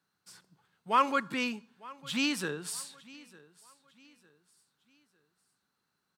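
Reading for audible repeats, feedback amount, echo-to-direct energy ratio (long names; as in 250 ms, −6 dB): 2, 37%, −21.0 dB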